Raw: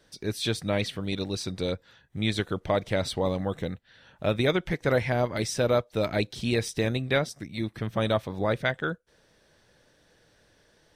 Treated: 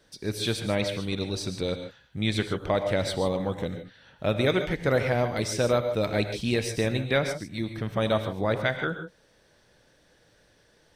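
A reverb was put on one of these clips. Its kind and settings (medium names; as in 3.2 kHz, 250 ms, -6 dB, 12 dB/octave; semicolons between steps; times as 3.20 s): gated-style reverb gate 170 ms rising, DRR 7.5 dB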